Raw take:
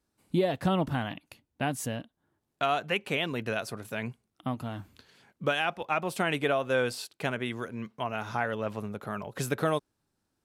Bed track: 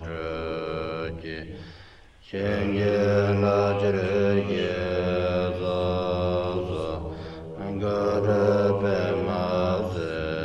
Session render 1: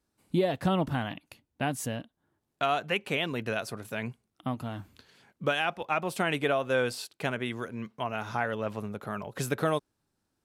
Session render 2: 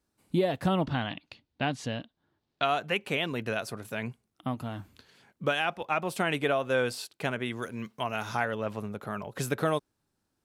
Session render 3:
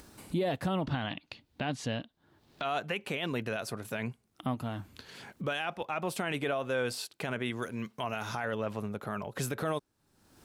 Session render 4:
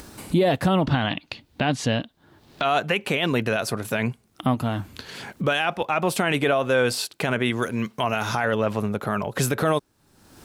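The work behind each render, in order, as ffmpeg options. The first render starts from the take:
ffmpeg -i in.wav -af anull out.wav
ffmpeg -i in.wav -filter_complex "[0:a]asplit=3[link_01][link_02][link_03];[link_01]afade=type=out:start_time=0.85:duration=0.02[link_04];[link_02]lowpass=frequency=4200:width_type=q:width=2,afade=type=in:start_time=0.85:duration=0.02,afade=type=out:start_time=2.64:duration=0.02[link_05];[link_03]afade=type=in:start_time=2.64:duration=0.02[link_06];[link_04][link_05][link_06]amix=inputs=3:normalize=0,asettb=1/sr,asplit=3[link_07][link_08][link_09];[link_07]atrim=end=7.624[link_10];[link_08]atrim=start=7.62:end=8.45,asetpts=PTS-STARTPTS,afade=type=in:duration=0.004:curve=qsin,afade=type=out:start_time=0.826:duration=0.004:curve=qsin,highshelf=frequency=3300:gain=9[link_11];[link_09]atrim=start=8.446[link_12];[link_10][link_11]acrossfade=duration=0.004:curve1=hsin:curve2=qsin[link_13];[link_13][link_12]acrossfade=duration=0.004:curve1=qsin:curve2=hsin" out.wav
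ffmpeg -i in.wav -af "alimiter=limit=-22.5dB:level=0:latency=1:release=34,acompressor=mode=upward:threshold=-35dB:ratio=2.5" out.wav
ffmpeg -i in.wav -af "volume=11dB" out.wav

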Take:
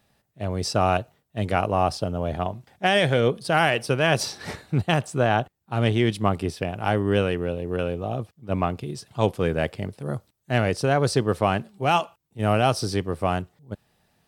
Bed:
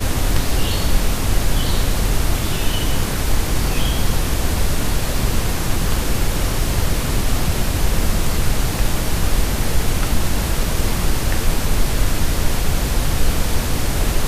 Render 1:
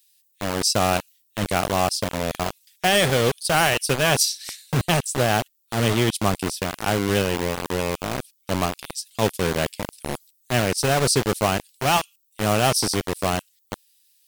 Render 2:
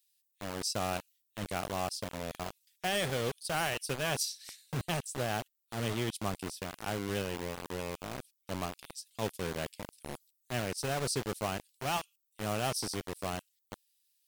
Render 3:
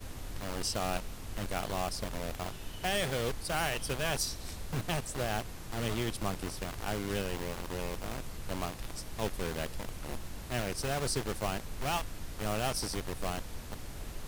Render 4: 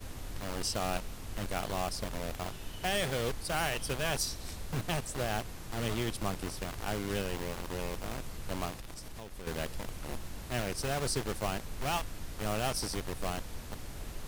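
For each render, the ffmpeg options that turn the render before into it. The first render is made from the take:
ffmpeg -i in.wav -filter_complex "[0:a]acrossover=split=2500[link_01][link_02];[link_01]acrusher=bits=3:mix=0:aa=0.000001[link_03];[link_02]crystalizer=i=3:c=0[link_04];[link_03][link_04]amix=inputs=2:normalize=0" out.wav
ffmpeg -i in.wav -af "volume=-13.5dB" out.wav
ffmpeg -i in.wav -i bed.wav -filter_complex "[1:a]volume=-24dB[link_01];[0:a][link_01]amix=inputs=2:normalize=0" out.wav
ffmpeg -i in.wav -filter_complex "[0:a]asettb=1/sr,asplit=3[link_01][link_02][link_03];[link_01]atrim=end=8.794[link_04];[link_02]atrim=start=8.79:end=9.47,asetpts=PTS-STARTPTS,afade=type=in:duration=0.004:curve=qsin,afade=type=out:start_time=0.676:duration=0.004:curve=qsin,acompressor=threshold=-39dB:ratio=12:attack=3.2:release=140:knee=1:detection=peak[link_05];[link_03]atrim=start=9.466[link_06];[link_04][link_05]acrossfade=duration=0.004:curve1=hsin:curve2=qsin[link_07];[link_07][link_06]acrossfade=duration=0.004:curve1=qsin:curve2=hsin" out.wav

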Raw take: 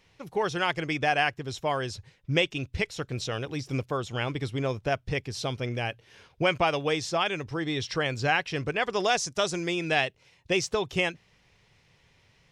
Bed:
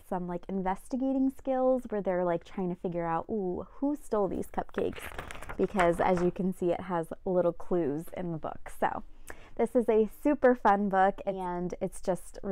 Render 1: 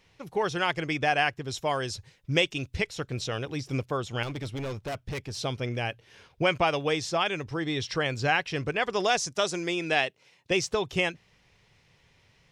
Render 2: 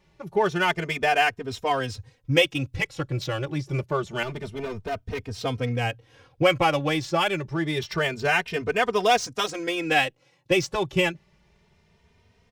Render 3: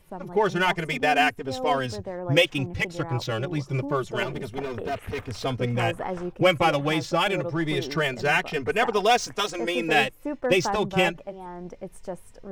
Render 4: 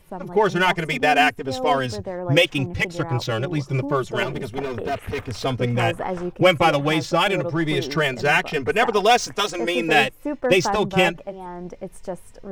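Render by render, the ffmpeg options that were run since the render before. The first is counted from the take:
ffmpeg -i in.wav -filter_complex "[0:a]asettb=1/sr,asplit=3[link_01][link_02][link_03];[link_01]atrim=end=1.514[link_04];[link_02]atrim=start=1.51:end=2.78,asetpts=PTS-STARTPTS,afade=type=in:duration=0.004:curve=qsin,afade=type=out:start_time=1.266:duration=0.004:curve=qsin,bass=frequency=250:gain=-1,treble=frequency=4000:gain=5[link_05];[link_03]atrim=start=2.776[link_06];[link_04][link_05]acrossfade=duration=0.004:curve1=hsin:curve2=qsin[link_07];[link_07][link_06]acrossfade=duration=0.004:curve1=qsin:curve2=hsin,asettb=1/sr,asplit=3[link_08][link_09][link_10];[link_08]atrim=end=4.234[link_11];[link_09]atrim=start=4.23:end=5.36,asetpts=PTS-STARTPTS,afade=type=in:duration=0.004:curve=qsin,afade=type=out:start_time=1.126:duration=0.004:curve=qsin,volume=30.5dB,asoftclip=hard,volume=-30.5dB[link_12];[link_10]atrim=start=5.356[link_13];[link_11][link_12]acrossfade=duration=0.004:curve1=hsin:curve2=qsin[link_14];[link_14][link_13]acrossfade=duration=0.004:curve1=qsin:curve2=hsin,asettb=1/sr,asplit=3[link_15][link_16][link_17];[link_15]atrim=end=9.364[link_18];[link_16]atrim=start=9.36:end=10.51,asetpts=PTS-STARTPTS,afade=type=in:duration=0.004:curve=qsin,afade=type=out:start_time=1.146:duration=0.004:curve=qsin,highpass=180[link_19];[link_17]atrim=start=10.506[link_20];[link_18][link_19]acrossfade=duration=0.004:curve1=hsin:curve2=qsin[link_21];[link_21][link_20]acrossfade=duration=0.004:curve1=qsin:curve2=hsin" out.wav
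ffmpeg -i in.wav -filter_complex "[0:a]asplit=2[link_01][link_02];[link_02]adynamicsmooth=sensitivity=7.5:basefreq=1400,volume=2dB[link_03];[link_01][link_03]amix=inputs=2:normalize=0,asplit=2[link_04][link_05];[link_05]adelay=3,afreqshift=0.27[link_06];[link_04][link_06]amix=inputs=2:normalize=1" out.wav
ffmpeg -i in.wav -i bed.wav -filter_complex "[1:a]volume=-4.5dB[link_01];[0:a][link_01]amix=inputs=2:normalize=0" out.wav
ffmpeg -i in.wav -af "volume=4dB,alimiter=limit=-3dB:level=0:latency=1" out.wav

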